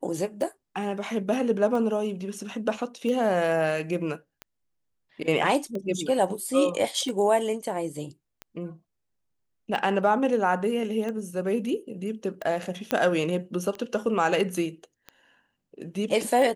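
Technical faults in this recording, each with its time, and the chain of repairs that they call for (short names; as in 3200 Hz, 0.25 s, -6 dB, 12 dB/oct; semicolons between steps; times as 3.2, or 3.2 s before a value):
tick 45 rpm
12.91 pop -10 dBFS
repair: de-click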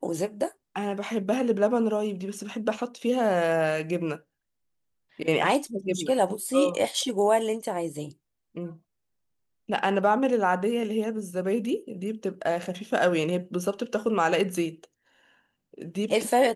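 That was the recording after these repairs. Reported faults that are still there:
none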